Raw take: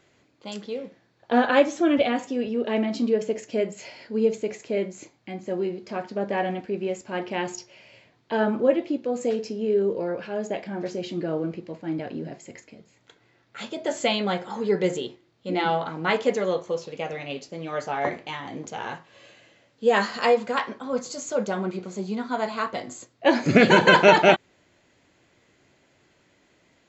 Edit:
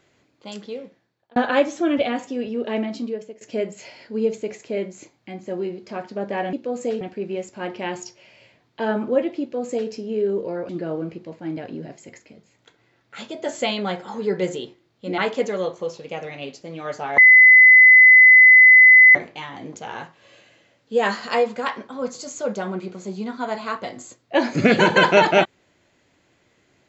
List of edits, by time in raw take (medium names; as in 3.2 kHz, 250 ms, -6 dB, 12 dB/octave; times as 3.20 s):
0.70–1.36 s: fade out
2.78–3.41 s: fade out, to -20.5 dB
8.93–9.41 s: copy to 6.53 s
10.21–11.11 s: delete
15.60–16.06 s: delete
18.06 s: add tone 2.02 kHz -6 dBFS 1.97 s